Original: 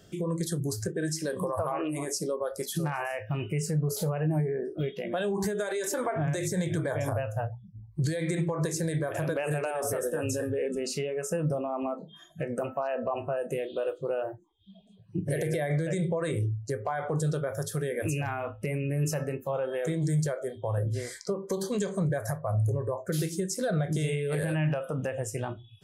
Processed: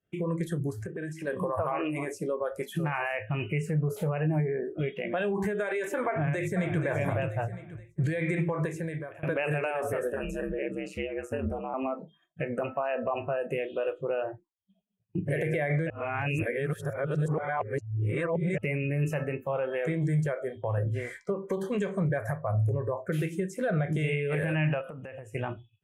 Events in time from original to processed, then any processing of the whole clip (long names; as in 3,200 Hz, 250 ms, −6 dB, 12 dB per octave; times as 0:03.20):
0:00.70–0:01.27: downward compressor 4 to 1, threshold −33 dBFS
0:06.08–0:06.80: delay throw 480 ms, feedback 45%, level −8.5 dB
0:08.55–0:09.23: fade out, to −17 dB
0:10.12–0:11.74: ring modulation 66 Hz
0:15.90–0:18.58: reverse
0:24.81–0:25.35: downward compressor 20 to 1, threshold −37 dBFS
whole clip: downward expander −40 dBFS; high shelf with overshoot 3,400 Hz −11 dB, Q 3